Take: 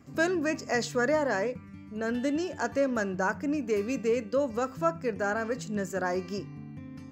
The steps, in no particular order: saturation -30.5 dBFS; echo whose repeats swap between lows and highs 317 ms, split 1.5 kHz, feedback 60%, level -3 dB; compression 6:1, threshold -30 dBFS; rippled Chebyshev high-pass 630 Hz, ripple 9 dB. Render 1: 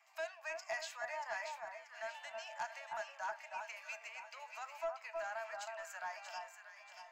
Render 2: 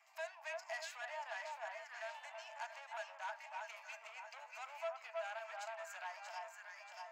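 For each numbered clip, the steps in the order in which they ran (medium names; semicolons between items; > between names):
compression > rippled Chebyshev high-pass > saturation > echo whose repeats swap between lows and highs; echo whose repeats swap between lows and highs > compression > saturation > rippled Chebyshev high-pass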